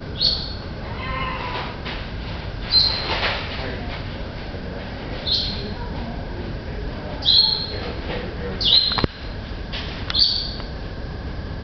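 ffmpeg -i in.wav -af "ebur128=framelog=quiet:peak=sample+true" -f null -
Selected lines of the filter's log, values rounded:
Integrated loudness:
  I:         -21.7 LUFS
  Threshold: -31.9 LUFS
Loudness range:
  LRA:         7.7 LU
  Threshold: -41.5 LUFS
  LRA low:   -26.9 LUFS
  LRA high:  -19.2 LUFS
Sample peak:
  Peak:       -1.9 dBFS
True peak:
  Peak:       -1.9 dBFS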